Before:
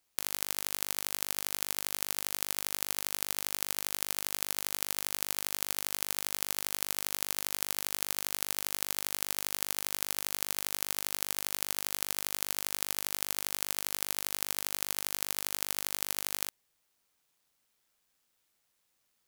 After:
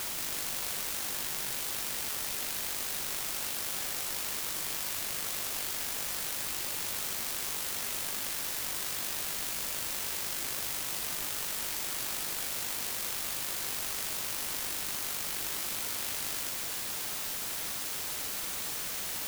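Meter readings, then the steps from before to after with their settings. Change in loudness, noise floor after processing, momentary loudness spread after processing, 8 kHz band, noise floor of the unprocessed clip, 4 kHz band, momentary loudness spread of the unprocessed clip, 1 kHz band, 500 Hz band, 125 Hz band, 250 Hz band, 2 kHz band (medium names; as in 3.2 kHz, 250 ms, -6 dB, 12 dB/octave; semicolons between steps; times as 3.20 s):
+0.5 dB, -36 dBFS, 1 LU, +1.0 dB, -77 dBFS, +1.0 dB, 0 LU, +1.0 dB, +1.0 dB, +1.0 dB, +1.0 dB, +1.0 dB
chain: peak limiter -12.5 dBFS, peak gain reduction 10 dB; word length cut 6-bit, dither triangular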